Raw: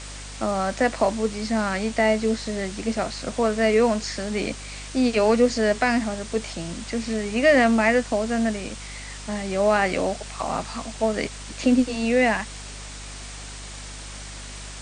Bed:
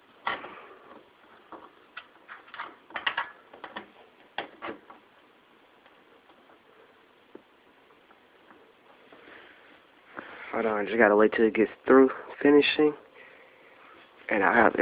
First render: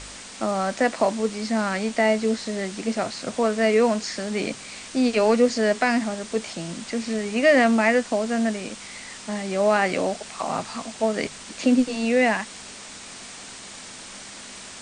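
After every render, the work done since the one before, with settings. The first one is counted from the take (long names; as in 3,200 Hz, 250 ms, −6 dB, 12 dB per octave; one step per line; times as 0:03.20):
hum removal 50 Hz, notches 3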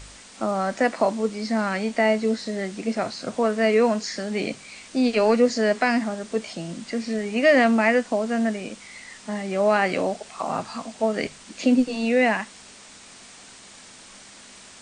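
noise reduction from a noise print 6 dB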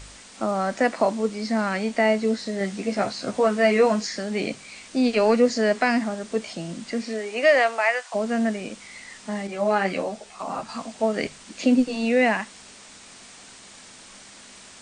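0:02.59–0:04.07: double-tracking delay 15 ms −3.5 dB
0:07.01–0:08.14: high-pass filter 220 Hz → 810 Hz 24 dB per octave
0:09.47–0:10.69: string-ensemble chorus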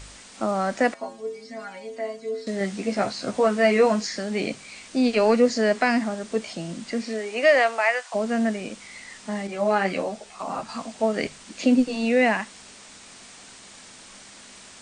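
0:00.94–0:02.47: stiff-string resonator 81 Hz, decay 0.53 s, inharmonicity 0.008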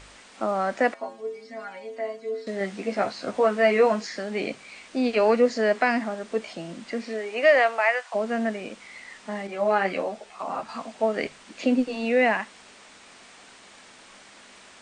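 bass and treble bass −8 dB, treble −9 dB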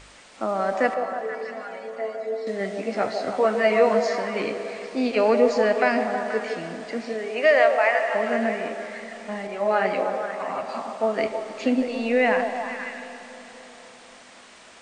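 on a send: echo through a band-pass that steps 160 ms, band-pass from 550 Hz, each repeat 0.7 octaves, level −3 dB
on the sum: comb and all-pass reverb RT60 4.4 s, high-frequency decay 0.7×, pre-delay 10 ms, DRR 9.5 dB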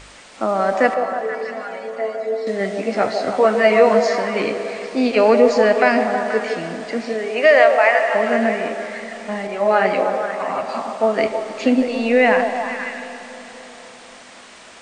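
level +6 dB
brickwall limiter −2 dBFS, peak gain reduction 1 dB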